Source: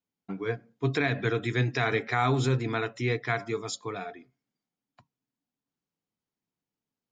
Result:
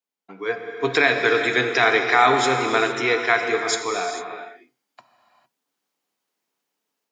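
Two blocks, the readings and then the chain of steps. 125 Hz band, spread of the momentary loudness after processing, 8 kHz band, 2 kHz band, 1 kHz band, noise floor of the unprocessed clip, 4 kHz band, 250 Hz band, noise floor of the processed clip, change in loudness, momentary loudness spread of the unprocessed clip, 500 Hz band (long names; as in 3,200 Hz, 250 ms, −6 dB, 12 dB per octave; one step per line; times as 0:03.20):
−9.0 dB, 13 LU, +12.5 dB, +12.0 dB, +12.0 dB, below −85 dBFS, +12.0 dB, +3.5 dB, −81 dBFS, +9.5 dB, 9 LU, +9.0 dB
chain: high-pass filter 440 Hz 12 dB per octave
automatic gain control gain up to 12 dB
reverb whose tail is shaped and stops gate 480 ms flat, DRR 4.5 dB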